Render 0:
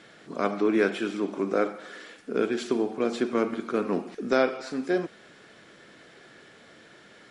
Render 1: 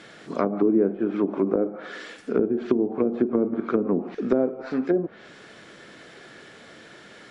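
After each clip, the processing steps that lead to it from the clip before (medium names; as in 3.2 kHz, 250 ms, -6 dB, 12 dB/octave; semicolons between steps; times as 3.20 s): low-pass that closes with the level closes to 400 Hz, closed at -22 dBFS; trim +5.5 dB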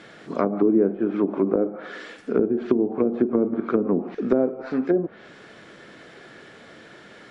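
treble shelf 3.7 kHz -6.5 dB; trim +1.5 dB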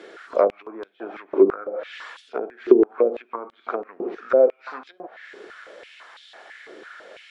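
step-sequenced high-pass 6 Hz 390–3500 Hz; trim -1.5 dB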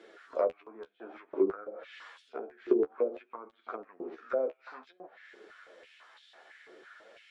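flange 0.56 Hz, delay 8.6 ms, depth 6 ms, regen +24%; trim -8 dB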